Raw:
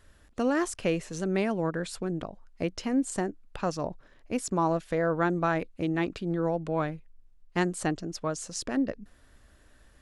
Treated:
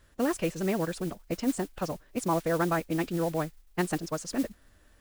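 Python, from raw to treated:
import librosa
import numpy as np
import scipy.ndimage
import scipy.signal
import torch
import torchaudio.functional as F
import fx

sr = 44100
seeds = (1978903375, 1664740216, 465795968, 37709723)

y = fx.stretch_vocoder(x, sr, factor=0.5)
y = fx.mod_noise(y, sr, seeds[0], snr_db=18)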